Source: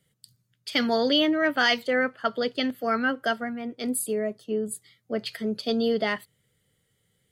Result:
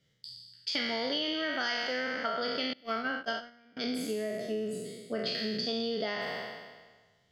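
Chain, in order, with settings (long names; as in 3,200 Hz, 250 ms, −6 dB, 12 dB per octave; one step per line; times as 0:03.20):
peak hold with a decay on every bin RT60 1.41 s
0:02.73–0:03.77: noise gate −22 dBFS, range −26 dB
high shelf with overshoot 7,300 Hz −11 dB, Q 3
downward compressor 5 to 1, threshold −26 dBFS, peak gain reduction 12.5 dB
level −4 dB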